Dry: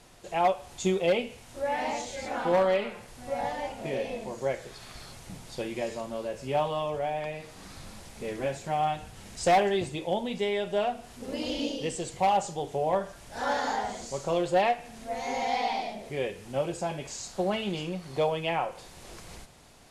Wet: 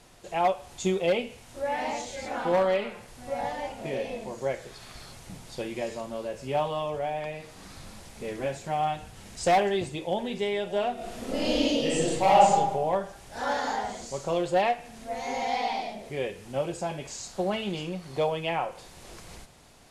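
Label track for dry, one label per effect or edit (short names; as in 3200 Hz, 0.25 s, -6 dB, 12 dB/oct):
9.590000	10.350000	echo throw 0.59 s, feedback 60%, level -17.5 dB
10.940000	12.530000	reverb throw, RT60 1.1 s, DRR -6 dB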